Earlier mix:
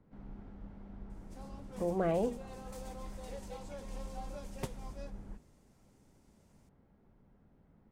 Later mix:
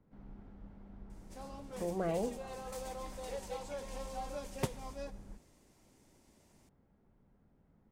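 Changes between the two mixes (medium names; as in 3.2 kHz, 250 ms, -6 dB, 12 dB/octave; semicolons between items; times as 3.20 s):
speech -3.5 dB; background +5.0 dB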